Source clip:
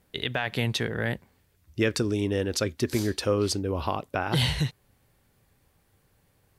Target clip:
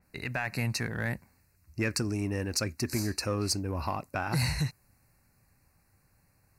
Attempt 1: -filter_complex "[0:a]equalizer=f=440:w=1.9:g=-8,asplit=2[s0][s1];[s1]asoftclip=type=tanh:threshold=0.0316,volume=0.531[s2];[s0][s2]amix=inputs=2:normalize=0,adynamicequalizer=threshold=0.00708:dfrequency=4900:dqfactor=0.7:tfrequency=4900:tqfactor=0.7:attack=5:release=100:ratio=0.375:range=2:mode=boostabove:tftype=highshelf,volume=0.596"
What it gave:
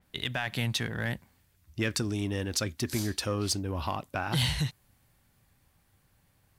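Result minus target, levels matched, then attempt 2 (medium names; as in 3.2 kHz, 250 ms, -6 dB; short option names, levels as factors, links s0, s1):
4 kHz band +3.5 dB
-filter_complex "[0:a]asuperstop=centerf=3300:order=12:qfactor=2.7,equalizer=f=440:w=1.9:g=-8,asplit=2[s0][s1];[s1]asoftclip=type=tanh:threshold=0.0316,volume=0.531[s2];[s0][s2]amix=inputs=2:normalize=0,adynamicequalizer=threshold=0.00708:dfrequency=4900:dqfactor=0.7:tfrequency=4900:tqfactor=0.7:attack=5:release=100:ratio=0.375:range=2:mode=boostabove:tftype=highshelf,volume=0.596"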